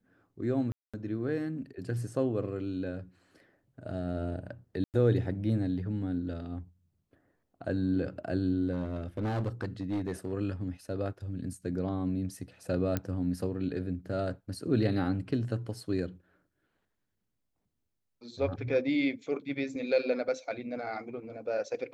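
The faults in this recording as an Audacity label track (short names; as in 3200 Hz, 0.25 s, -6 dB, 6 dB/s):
0.720000	0.940000	gap 0.216 s
4.840000	4.940000	gap 98 ms
8.720000	10.330000	clipped -27.5 dBFS
12.970000	12.970000	pop -16 dBFS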